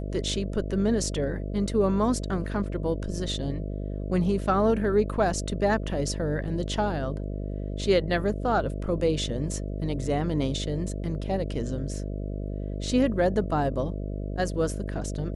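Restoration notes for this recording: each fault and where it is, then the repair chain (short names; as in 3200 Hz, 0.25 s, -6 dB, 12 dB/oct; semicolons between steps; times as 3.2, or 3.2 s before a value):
buzz 50 Hz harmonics 13 -32 dBFS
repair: de-hum 50 Hz, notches 13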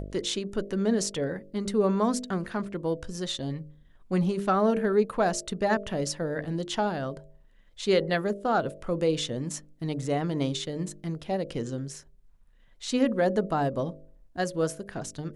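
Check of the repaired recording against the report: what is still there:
none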